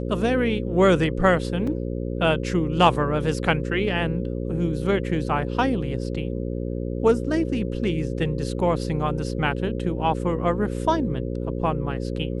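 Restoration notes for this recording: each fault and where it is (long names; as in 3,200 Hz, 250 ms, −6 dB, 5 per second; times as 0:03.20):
mains buzz 60 Hz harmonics 9 −28 dBFS
0:01.67: drop-out 4.3 ms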